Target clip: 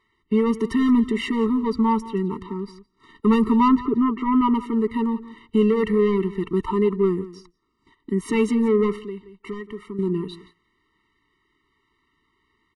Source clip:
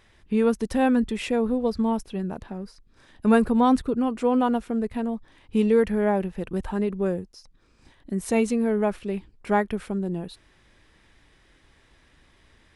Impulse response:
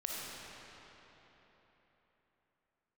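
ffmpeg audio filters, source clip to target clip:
-filter_complex "[0:a]asplit=2[s0][s1];[s1]highpass=f=720:p=1,volume=11.2,asoftclip=type=tanh:threshold=0.531[s2];[s0][s2]amix=inputs=2:normalize=0,lowpass=f=1300:p=1,volume=0.501,asettb=1/sr,asplit=3[s3][s4][s5];[s3]atrim=end=3.684[s6];[s4]atrim=start=3.68:end=4.55,asetpts=PTS-STARTPTS,afade=t=in:d=0.004:c=qsin,afade=t=out:st=0.866:d=0.004:c=qsin,lowpass=2500[s7];[s5]atrim=start=4.546[s8];[s6][s7]acrossfade=d=0.004:c1=hsin:c2=qsin[s9];[s9][s8]acrossfade=d=0.004:c1=qsin:c2=hsin,aecho=1:1:174|348:0.141|0.0226,asettb=1/sr,asplit=3[s10][s11][s12];[s10]atrim=end=8.984[s13];[s11]atrim=start=8.98:end=9.99,asetpts=PTS-STARTPTS,afade=t=in:d=0.004:c=qsin,afade=t=out:st=1.006:d=0.004:c=qsin,acompressor=threshold=0.0126:ratio=2[s14];[s12]atrim=start=9.986[s15];[s13][s14]acrossfade=d=0.004:c1=hsin:c2=qsin[s16];[s16][s15]acrossfade=d=0.004:c1=qsin:c2=hsin,agate=range=0.178:threshold=0.00501:ratio=16:detection=peak,afftfilt=real='re*eq(mod(floor(b*sr/1024/450),2),0)':imag='im*eq(mod(floor(b*sr/1024/450),2),0)':win_size=1024:overlap=0.75"

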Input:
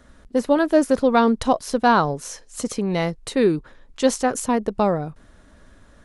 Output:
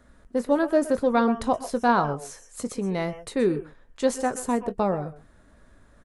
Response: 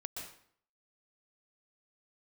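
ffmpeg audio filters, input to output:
-filter_complex "[0:a]asplit=2[s0][s1];[s1]adelay=21,volume=0.224[s2];[s0][s2]amix=inputs=2:normalize=0,asplit=2[s3][s4];[s4]asuperstop=centerf=4200:order=8:qfactor=1.7[s5];[1:a]atrim=start_sample=2205,atrim=end_sample=6174[s6];[s5][s6]afir=irnorm=-1:irlink=0,volume=0.708[s7];[s3][s7]amix=inputs=2:normalize=0,volume=0.398"

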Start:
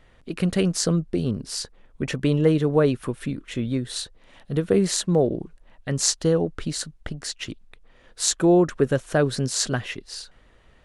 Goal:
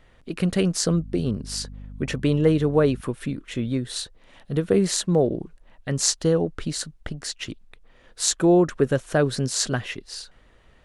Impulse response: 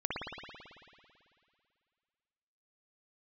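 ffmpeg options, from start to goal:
-filter_complex "[0:a]asettb=1/sr,asplit=3[s0][s1][s2];[s0]atrim=end=0.924[s3];[s1]atrim=start=0.92:end=3.01,asetpts=PTS-STARTPTS,afade=t=in:d=0.004:c=qsin,afade=t=out:st=2.086:d=0.004:c=qsin,aeval=exprs='val(0)+0.0141*(sin(2*PI*50*n/s)+sin(2*PI*2*50*n/s)/2+sin(2*PI*3*50*n/s)/3+sin(2*PI*4*50*n/s)/4+sin(2*PI*5*50*n/s)/5)':c=same[s4];[s2]atrim=start=3.006[s5];[s3][s4]acrossfade=d=0.004:c1=hsin:c2=qsin[s6];[s6][s5]acrossfade=d=0.004:c1=qsin:c2=hsin"

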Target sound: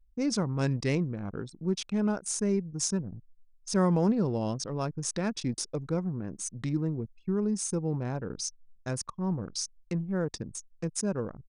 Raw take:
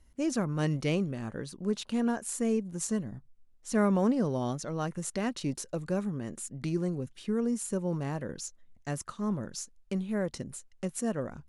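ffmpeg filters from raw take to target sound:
-af "aexciter=amount=2:drive=2.8:freq=5400,anlmdn=0.631,asetrate=39289,aresample=44100,atempo=1.12246,volume=1.12"

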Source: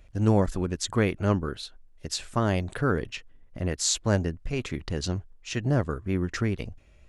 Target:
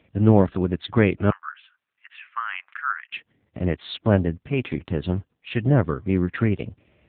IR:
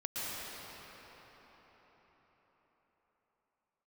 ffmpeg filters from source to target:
-filter_complex "[0:a]asettb=1/sr,asplit=3[s0][s1][s2];[s0]atrim=end=1.304[s3];[s1]atrim=start=1.3:end=3.12,asetpts=PTS-STARTPTS,afade=t=in:d=0.004:c=qsin,afade=t=out:st=1.816:d=0.004:c=qsin,asuperpass=centerf=1800:order=8:qfactor=1[s4];[s2]atrim=start=3.116[s5];[s3][s4]acrossfade=d=0.004:c1=hsin:c2=qsin[s6];[s6][s5]acrossfade=d=0.004:c1=qsin:c2=hsin,volume=2.11" -ar 8000 -c:a libopencore_amrnb -b:a 6700

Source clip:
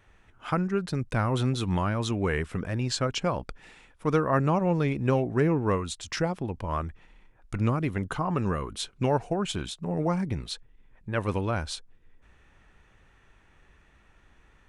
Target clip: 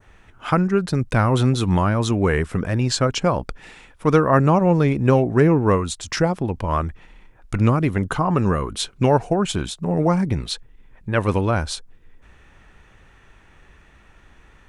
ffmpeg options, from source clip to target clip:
-af "adynamicequalizer=threshold=0.00501:dfrequency=2900:dqfactor=0.97:tfrequency=2900:tqfactor=0.97:attack=5:release=100:ratio=0.375:range=2.5:mode=cutabove:tftype=bell,volume=2.66"

